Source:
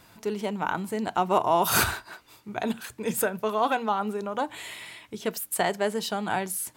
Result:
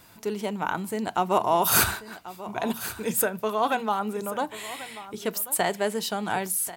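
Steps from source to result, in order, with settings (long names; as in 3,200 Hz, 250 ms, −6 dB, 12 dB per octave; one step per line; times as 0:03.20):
high-shelf EQ 8,400 Hz +7 dB
single-tap delay 1,088 ms −15.5 dB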